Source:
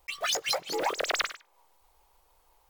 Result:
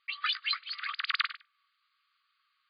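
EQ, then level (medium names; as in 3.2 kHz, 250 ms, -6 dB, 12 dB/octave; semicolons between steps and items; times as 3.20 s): brick-wall FIR high-pass 1.1 kHz; brick-wall FIR low-pass 4.9 kHz; 0.0 dB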